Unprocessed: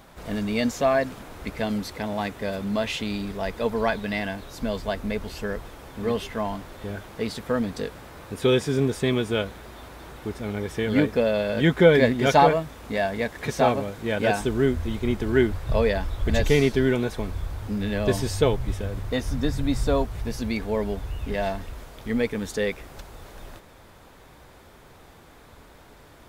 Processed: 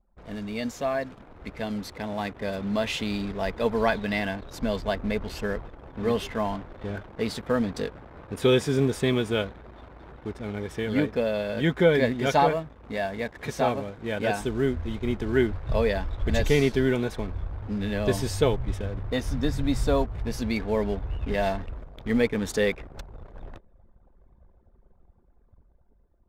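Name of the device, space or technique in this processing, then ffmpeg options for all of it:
voice memo with heavy noise removal: -af "anlmdn=0.251,dynaudnorm=f=640:g=7:m=11.5dB,volume=-7dB"

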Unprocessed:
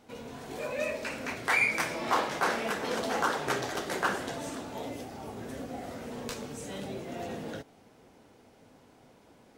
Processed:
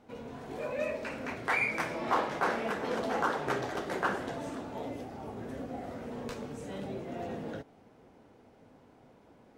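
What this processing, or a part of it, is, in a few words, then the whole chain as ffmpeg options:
through cloth: -af "highshelf=f=3k:g=-12"

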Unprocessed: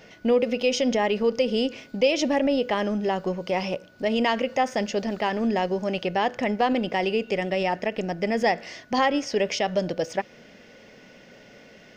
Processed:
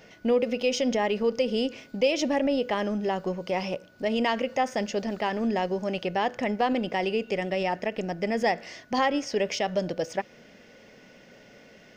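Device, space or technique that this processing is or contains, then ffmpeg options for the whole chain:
exciter from parts: -filter_complex "[0:a]asplit=2[a][b];[b]highpass=f=4.6k:p=1,asoftclip=type=tanh:threshold=-29.5dB,highpass=3.5k,volume=-10.5dB[c];[a][c]amix=inputs=2:normalize=0,volume=-2.5dB"

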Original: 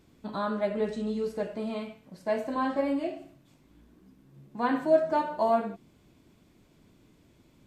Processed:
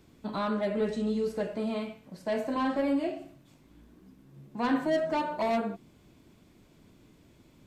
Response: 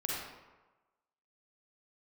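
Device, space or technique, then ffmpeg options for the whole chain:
one-band saturation: -filter_complex "[0:a]acrossover=split=350|2800[a][b][c];[b]asoftclip=type=tanh:threshold=-29dB[d];[a][d][c]amix=inputs=3:normalize=0,volume=2dB"

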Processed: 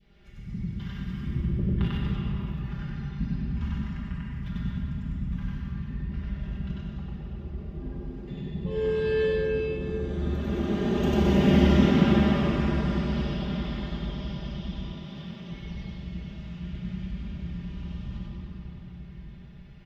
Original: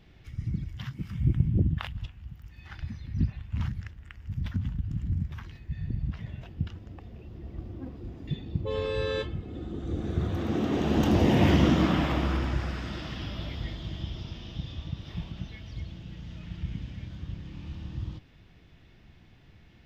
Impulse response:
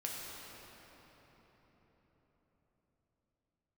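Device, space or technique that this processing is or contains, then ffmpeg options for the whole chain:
swimming-pool hall: -filter_complex "[1:a]atrim=start_sample=2205[a];[0:a][a]afir=irnorm=-1:irlink=0,highshelf=f=4.9k:g=-5.5,asettb=1/sr,asplit=3[b][c][d];[b]atrim=end=14.824[e];[c]atrim=start=14.82:end=15.51,asetpts=PTS-STARTPTS,afade=t=in:d=0.004:c=qsin,afade=t=out:st=0.686:d=0.004:c=qsin,highpass=150[f];[d]atrim=start=15.506[g];[e][f]acrossfade=d=0.004:c1=hsin:c2=qsin[h];[h][g]acrossfade=d=0.004:c1=qsin:c2=hsin,adynamicequalizer=threshold=0.01:dfrequency=990:dqfactor=0.84:tfrequency=990:tqfactor=0.84:attack=5:release=100:ratio=0.375:range=2:mode=cutabove:tftype=bell,aecho=1:1:5:0.94,aecho=1:1:96.21|218.7:1|0.355,volume=-4.5dB"

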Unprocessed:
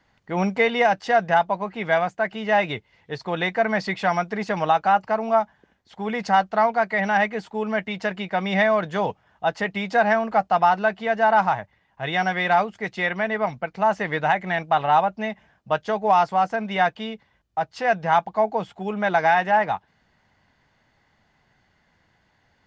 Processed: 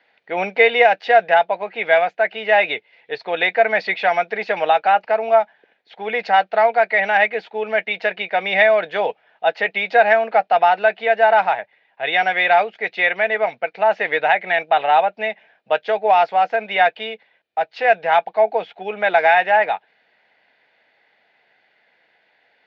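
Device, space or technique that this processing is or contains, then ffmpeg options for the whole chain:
phone earpiece: -af "highpass=450,equalizer=f=470:t=q:w=4:g=6,equalizer=f=680:t=q:w=4:g=4,equalizer=f=1.1k:t=q:w=4:g=-9,equalizer=f=1.7k:t=q:w=4:g=3,equalizer=f=2.4k:t=q:w=4:g=9,equalizer=f=3.8k:t=q:w=4:g=4,lowpass=f=4.2k:w=0.5412,lowpass=f=4.2k:w=1.3066,volume=3dB"

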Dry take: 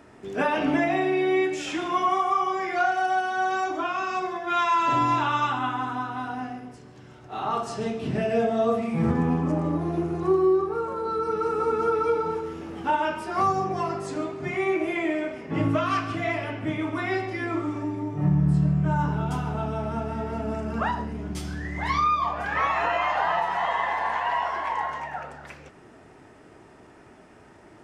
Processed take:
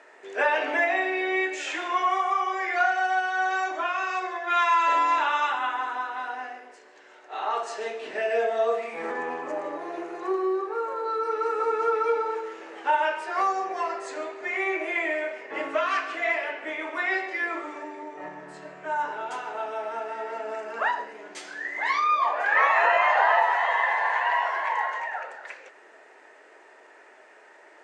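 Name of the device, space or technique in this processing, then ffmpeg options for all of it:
phone speaker on a table: -filter_complex "[0:a]highpass=f=480:w=0.5412,highpass=f=480:w=1.3066,equalizer=f=740:t=q:w=4:g=-4,equalizer=f=1.2k:t=q:w=4:g=-5,equalizer=f=1.8k:t=q:w=4:g=5,equalizer=f=3.3k:t=q:w=4:g=-4,equalizer=f=5.3k:t=q:w=4:g=-7,lowpass=f=7.6k:w=0.5412,lowpass=f=7.6k:w=1.3066,asettb=1/sr,asplit=3[a][b][c];[a]atrim=end=22.094[d];[b]atrim=start=22.09:end=23.56,asetpts=PTS-STARTPTS,afade=t=in:d=0.004:c=qsin,afade=t=out:st=1.466:d=0.004:c=qsin,equalizer=f=610:t=o:w=2.6:g=4[e];[c]atrim=start=23.556[f];[d][e]acrossfade=d=0.004:c1=hsin:c2=qsin[g];[g][f]acrossfade=d=0.004:c1=qsin:c2=hsin,volume=3dB"

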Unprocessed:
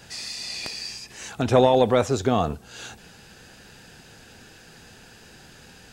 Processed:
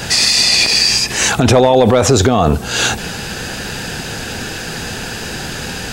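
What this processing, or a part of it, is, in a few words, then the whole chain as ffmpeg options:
loud club master: -af "acompressor=threshold=-27dB:ratio=1.5,asoftclip=type=hard:threshold=-14dB,alimiter=level_in=25dB:limit=-1dB:release=50:level=0:latency=1,volume=-1dB"

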